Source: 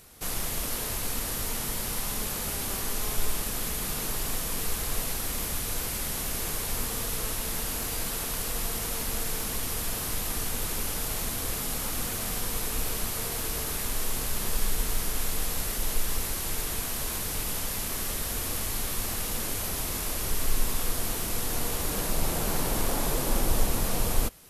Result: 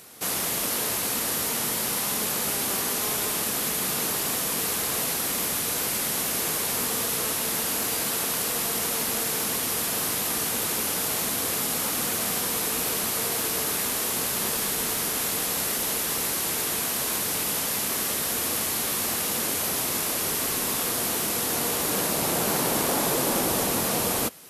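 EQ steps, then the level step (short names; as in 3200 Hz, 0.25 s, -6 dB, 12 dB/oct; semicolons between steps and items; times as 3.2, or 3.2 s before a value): HPF 180 Hz 12 dB/oct; +6.0 dB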